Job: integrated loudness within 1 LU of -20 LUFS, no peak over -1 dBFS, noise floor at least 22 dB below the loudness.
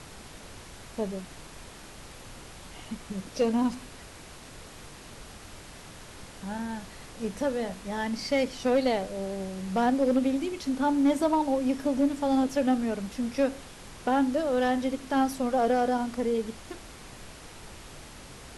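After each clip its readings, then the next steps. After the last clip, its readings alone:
clipped samples 0.3%; clipping level -17.0 dBFS; noise floor -47 dBFS; noise floor target -50 dBFS; loudness -28.0 LUFS; peak level -17.0 dBFS; loudness target -20.0 LUFS
-> clip repair -17 dBFS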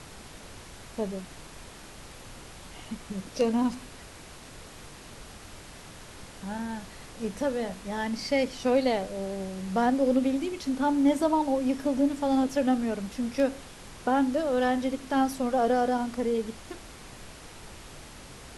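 clipped samples 0.0%; noise floor -47 dBFS; noise floor target -50 dBFS
-> noise print and reduce 6 dB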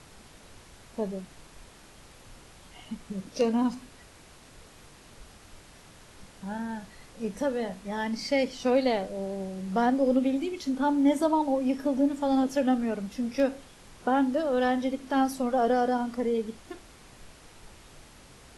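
noise floor -53 dBFS; loudness -28.0 LUFS; peak level -11.5 dBFS; loudness target -20.0 LUFS
-> trim +8 dB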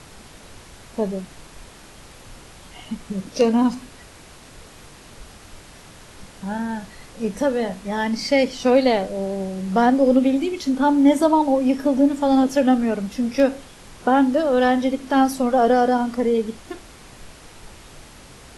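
loudness -20.0 LUFS; peak level -3.5 dBFS; noise floor -45 dBFS

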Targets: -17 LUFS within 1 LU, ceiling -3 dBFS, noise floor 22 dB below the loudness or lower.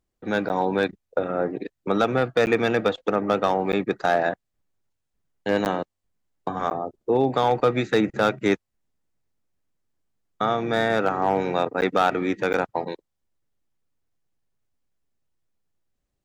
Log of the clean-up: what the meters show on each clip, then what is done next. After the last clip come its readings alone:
clipped samples 0.2%; clipping level -11.0 dBFS; dropouts 7; longest dropout 9.7 ms; loudness -24.0 LUFS; peak level -11.0 dBFS; loudness target -17.0 LUFS
-> clip repair -11 dBFS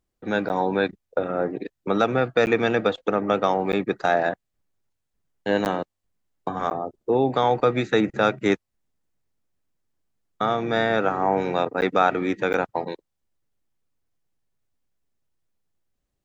clipped samples 0.0%; dropouts 7; longest dropout 9.7 ms
-> interpolate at 0.49/2.46/3.72/5.65/6.70/11.81/12.53 s, 9.7 ms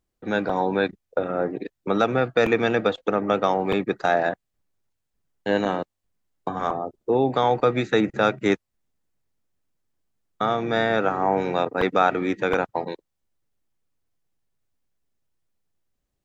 dropouts 0; loudness -23.5 LUFS; peak level -6.5 dBFS; loudness target -17.0 LUFS
-> trim +6.5 dB; peak limiter -3 dBFS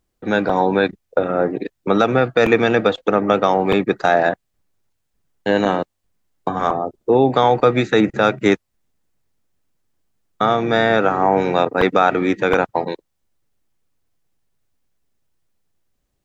loudness -17.5 LUFS; peak level -3.0 dBFS; noise floor -73 dBFS

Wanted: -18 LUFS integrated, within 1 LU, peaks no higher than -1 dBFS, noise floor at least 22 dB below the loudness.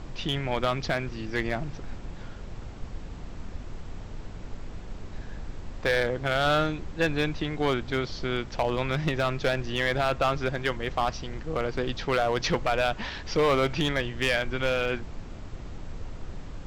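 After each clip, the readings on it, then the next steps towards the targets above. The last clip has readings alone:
clipped samples 0.8%; clipping level -17.5 dBFS; noise floor -41 dBFS; noise floor target -50 dBFS; loudness -27.5 LUFS; peak level -17.5 dBFS; loudness target -18.0 LUFS
-> clip repair -17.5 dBFS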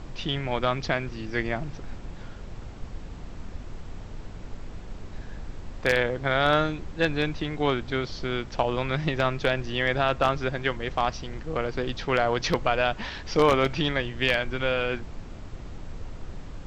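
clipped samples 0.0%; noise floor -41 dBFS; noise floor target -49 dBFS
-> noise print and reduce 8 dB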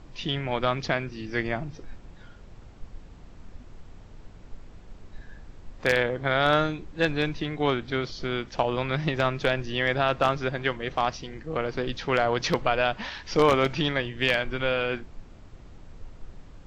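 noise floor -48 dBFS; noise floor target -49 dBFS
-> noise print and reduce 6 dB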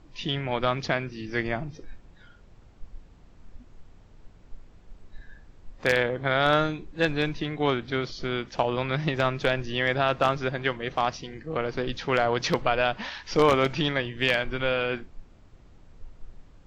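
noise floor -53 dBFS; loudness -26.5 LUFS; peak level -8.5 dBFS; loudness target -18.0 LUFS
-> trim +8.5 dB; peak limiter -1 dBFS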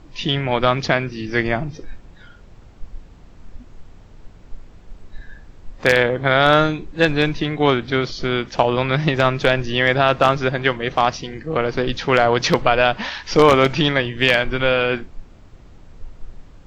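loudness -18.0 LUFS; peak level -1.0 dBFS; noise floor -44 dBFS

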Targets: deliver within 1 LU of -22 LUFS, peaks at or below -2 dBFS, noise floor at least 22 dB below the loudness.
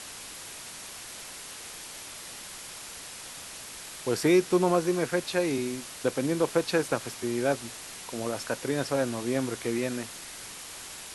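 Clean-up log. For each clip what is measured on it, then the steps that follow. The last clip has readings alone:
noise floor -43 dBFS; noise floor target -53 dBFS; loudness -30.5 LUFS; peak level -10.5 dBFS; loudness target -22.0 LUFS
-> noise reduction 10 dB, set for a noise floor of -43 dBFS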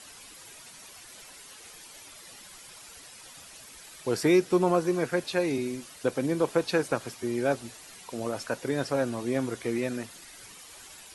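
noise floor -49 dBFS; noise floor target -51 dBFS
-> noise reduction 6 dB, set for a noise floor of -49 dBFS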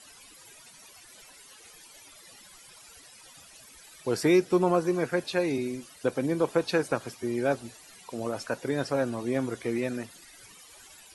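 noise floor -53 dBFS; loudness -28.5 LUFS; peak level -11.0 dBFS; loudness target -22.0 LUFS
-> trim +6.5 dB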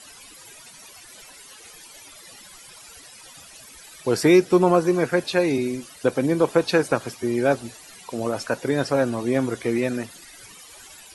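loudness -22.0 LUFS; peak level -4.5 dBFS; noise floor -46 dBFS

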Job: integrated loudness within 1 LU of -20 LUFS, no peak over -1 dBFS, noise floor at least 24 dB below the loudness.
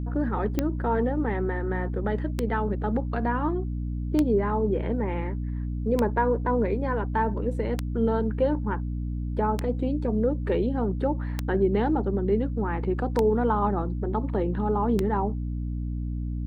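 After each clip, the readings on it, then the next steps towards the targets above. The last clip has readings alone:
clicks found 9; hum 60 Hz; highest harmonic 300 Hz; hum level -27 dBFS; loudness -27.0 LUFS; peak level -10.5 dBFS; loudness target -20.0 LUFS
-> de-click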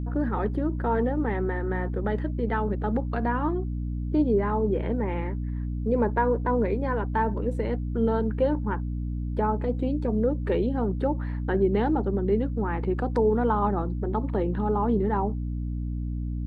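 clicks found 0; hum 60 Hz; highest harmonic 300 Hz; hum level -27 dBFS
-> hum notches 60/120/180/240/300 Hz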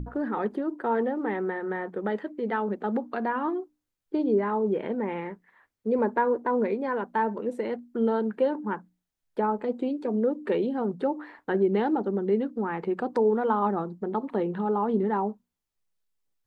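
hum not found; loudness -28.0 LUFS; peak level -12.5 dBFS; loudness target -20.0 LUFS
-> trim +8 dB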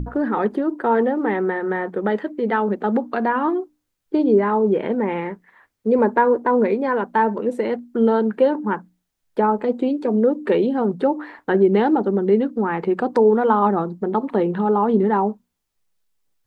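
loudness -20.0 LUFS; peak level -4.5 dBFS; noise floor -76 dBFS

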